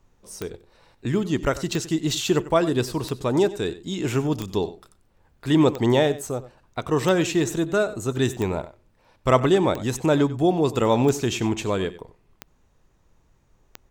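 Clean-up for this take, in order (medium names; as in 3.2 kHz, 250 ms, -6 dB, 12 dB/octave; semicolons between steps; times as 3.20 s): de-click; expander -53 dBFS, range -21 dB; inverse comb 94 ms -16 dB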